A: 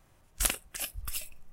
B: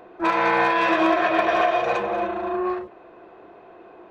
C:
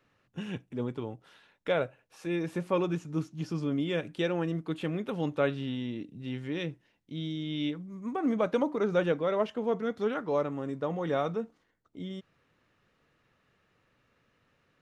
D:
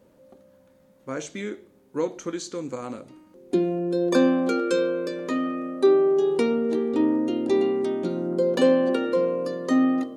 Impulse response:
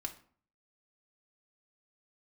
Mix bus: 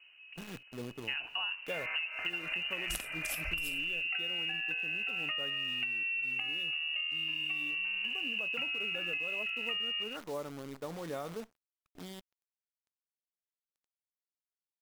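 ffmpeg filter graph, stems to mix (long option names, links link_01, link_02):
-filter_complex "[0:a]adelay=2500,volume=2dB[link_01];[1:a]alimiter=limit=-20dB:level=0:latency=1,adelay=1500,volume=-7dB[link_02];[2:a]lowshelf=frequency=150:gain=-2.5,acrusher=bits=7:dc=4:mix=0:aa=0.000001,volume=-8.5dB[link_03];[3:a]dynaudnorm=framelen=450:gausssize=7:maxgain=11.5dB,volume=-1.5dB[link_04];[link_02][link_04]amix=inputs=2:normalize=0,lowpass=frequency=2600:width_type=q:width=0.5098,lowpass=frequency=2600:width_type=q:width=0.6013,lowpass=frequency=2600:width_type=q:width=0.9,lowpass=frequency=2600:width_type=q:width=2.563,afreqshift=-3100,acompressor=threshold=-22dB:ratio=6,volume=0dB[link_05];[link_01][link_03][link_05]amix=inputs=3:normalize=0,acompressor=threshold=-33dB:ratio=10"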